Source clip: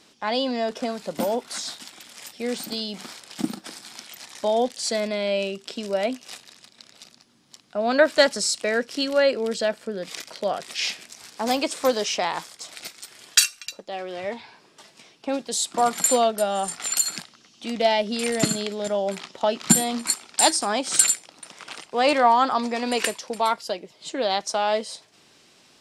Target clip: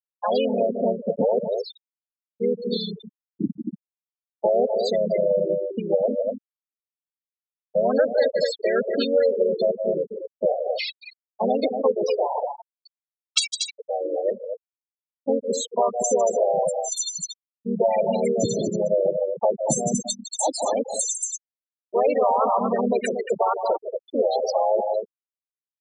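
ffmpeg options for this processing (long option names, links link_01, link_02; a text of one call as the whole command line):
ffmpeg -i in.wav -filter_complex "[0:a]aeval=exprs='0.891*(cos(1*acos(clip(val(0)/0.891,-1,1)))-cos(1*PI/2))+0.00891*(cos(7*acos(clip(val(0)/0.891,-1,1)))-cos(7*PI/2))':channel_layout=same,areverse,acompressor=mode=upward:threshold=-44dB:ratio=2.5,areverse,aecho=1:1:154.5|233.2:0.282|0.398,asoftclip=type=tanh:threshold=-13dB,asplit=3[link_01][link_02][link_03];[link_02]asetrate=37084,aresample=44100,atempo=1.18921,volume=-1dB[link_04];[link_03]asetrate=58866,aresample=44100,atempo=0.749154,volume=-15dB[link_05];[link_01][link_04][link_05]amix=inputs=3:normalize=0,agate=range=-16dB:threshold=-38dB:ratio=16:detection=peak,equalizer=frequency=125:width_type=o:width=1:gain=9,equalizer=frequency=250:width_type=o:width=1:gain=4,equalizer=frequency=500:width_type=o:width=1:gain=11,equalizer=frequency=1000:width_type=o:width=1:gain=5,equalizer=frequency=2000:width_type=o:width=1:gain=6,equalizer=frequency=4000:width_type=o:width=1:gain=9,equalizer=frequency=8000:width_type=o:width=1:gain=9,acompressor=threshold=-12dB:ratio=3,afftfilt=real='re*gte(hypot(re,im),0.398)':imag='im*gte(hypot(re,im),0.398)':win_size=1024:overlap=0.75,adynamicequalizer=threshold=0.0178:dfrequency=3000:dqfactor=0.7:tfrequency=3000:tqfactor=0.7:attack=5:release=100:ratio=0.375:range=3:mode=cutabove:tftype=highshelf,volume=-5.5dB" out.wav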